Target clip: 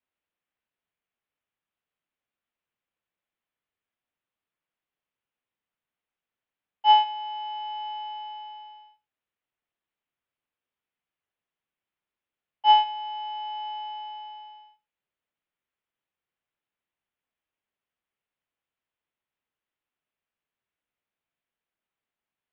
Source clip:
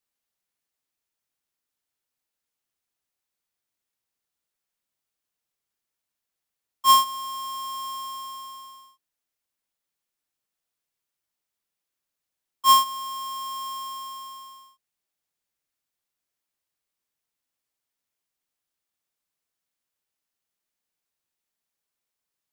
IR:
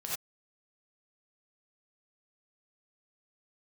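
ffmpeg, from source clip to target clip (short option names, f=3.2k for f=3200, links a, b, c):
-filter_complex "[0:a]highpass=f=250:t=q:w=0.5412,highpass=f=250:t=q:w=1.307,lowpass=f=3.5k:t=q:w=0.5176,lowpass=f=3.5k:t=q:w=0.7071,lowpass=f=3.5k:t=q:w=1.932,afreqshift=-220,asettb=1/sr,asplit=3[a][b][c];[a]atrim=end=6.934[d];[b]atrim=start=6.93:end=7.59,asetpts=PTS-STARTPTS,afade=t=in:d=0.004:c=qsin,afade=t=out:st=0.656:d=0.004:c=qsin,highpass=100[e];[c]atrim=start=7.586[f];[d][e]acrossfade=d=0.004:c1=hsin:c2=qsin[g];[g][f]acrossfade=d=0.004:c1=qsin:c2=hsin,asplit=2[h][i];[1:a]atrim=start_sample=2205[j];[i][j]afir=irnorm=-1:irlink=0,volume=-13.5dB[k];[h][k]amix=inputs=2:normalize=0,volume=-1dB"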